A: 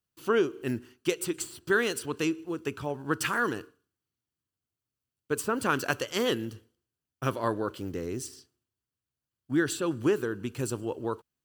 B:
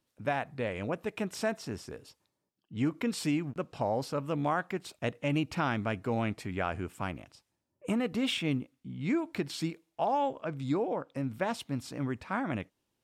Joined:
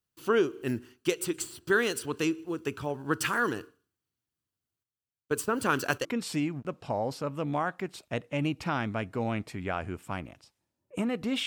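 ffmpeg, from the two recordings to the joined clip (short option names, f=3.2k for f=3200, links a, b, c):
-filter_complex "[0:a]asettb=1/sr,asplit=3[a][b][c];[a]atrim=end=4.834[d];[b]atrim=start=4.83:end=6.05,asetpts=PTS-STARTPTS,afade=t=in:d=0.004:c=qsin,afade=t=out:st=1.216:d=0.004:c=qsin,agate=range=-10dB:threshold=-40dB:ratio=16:release=100:detection=peak[e];[c]atrim=start=6.046[f];[d][e]acrossfade=d=0.004:c1=hsin:c2=qsin[g];[g][f]acrossfade=d=0.004:c1=qsin:c2=hsin,apad=whole_dur=11.46,atrim=end=11.46,atrim=end=6.052[h];[1:a]atrim=start=2.958:end=8.37[i];[h][i]acrossfade=d=0.004:c1=hsin:c2=hsin"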